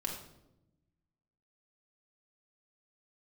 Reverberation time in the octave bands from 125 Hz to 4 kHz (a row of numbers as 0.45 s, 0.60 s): 1.6 s, 1.5 s, 1.0 s, 0.75 s, 0.60 s, 0.60 s